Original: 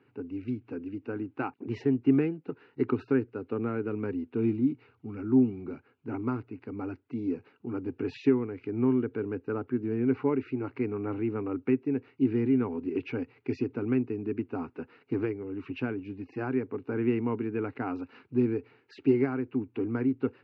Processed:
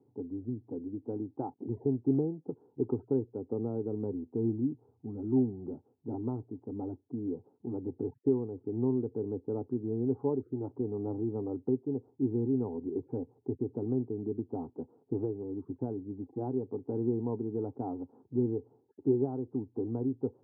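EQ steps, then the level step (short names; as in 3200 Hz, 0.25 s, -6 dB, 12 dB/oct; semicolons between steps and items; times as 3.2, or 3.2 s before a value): air absorption 390 m; dynamic EQ 270 Hz, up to -5 dB, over -36 dBFS, Q 1.9; elliptic low-pass 850 Hz, stop band 70 dB; 0.0 dB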